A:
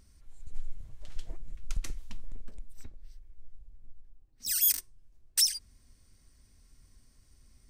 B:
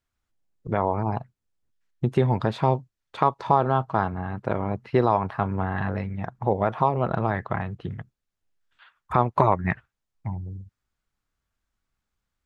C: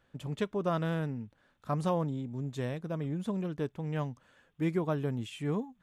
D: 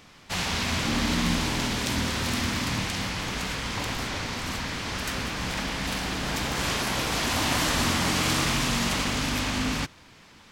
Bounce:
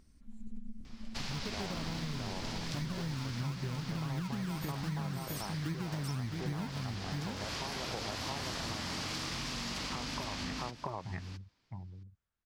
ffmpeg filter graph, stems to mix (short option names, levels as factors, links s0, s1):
-filter_complex "[0:a]tremolo=f=220:d=0.621,volume=0.944,asplit=2[s0][s1];[s1]volume=0.501[s2];[1:a]adelay=800,volume=0.376,asplit=2[s3][s4];[s4]volume=0.531[s5];[2:a]alimiter=level_in=1.5:limit=0.0631:level=0:latency=1:release=341,volume=0.668,asubboost=boost=9:cutoff=190,acrusher=samples=30:mix=1:aa=0.000001:lfo=1:lforange=18:lforate=3.8,adelay=1050,volume=1.26,asplit=2[s6][s7];[s7]volume=0.447[s8];[3:a]equalizer=f=4900:w=1.8:g=8.5,adelay=850,volume=0.376,asplit=2[s9][s10];[s10]volume=0.15[s11];[s0][s3]amix=inputs=2:normalize=0,acompressor=threshold=0.02:ratio=6,volume=1[s12];[s2][s5][s8][s11]amix=inputs=4:normalize=0,aecho=0:1:662:1[s13];[s6][s9][s12][s13]amix=inputs=4:normalize=0,highshelf=f=6100:g=-6.5,acompressor=threshold=0.0178:ratio=6"